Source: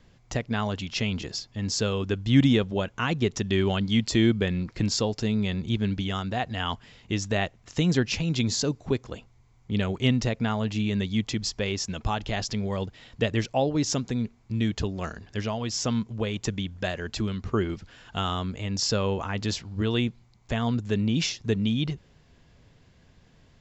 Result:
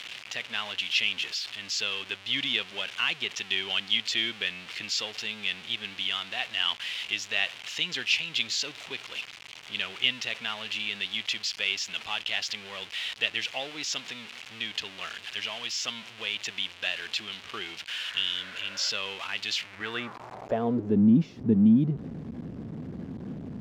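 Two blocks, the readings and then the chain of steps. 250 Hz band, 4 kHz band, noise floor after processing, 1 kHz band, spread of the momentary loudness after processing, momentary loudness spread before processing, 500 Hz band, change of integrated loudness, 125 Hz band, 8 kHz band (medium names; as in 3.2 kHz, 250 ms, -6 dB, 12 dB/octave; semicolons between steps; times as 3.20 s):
-3.5 dB, +5.0 dB, -47 dBFS, -6.5 dB, 12 LU, 8 LU, -9.0 dB, -1.5 dB, -10.5 dB, no reading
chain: jump at every zero crossing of -29.5 dBFS; band-pass sweep 2.9 kHz -> 230 Hz, 19.58–21.03 s; spectral replace 18.09–18.87 s, 520–2300 Hz both; trim +6.5 dB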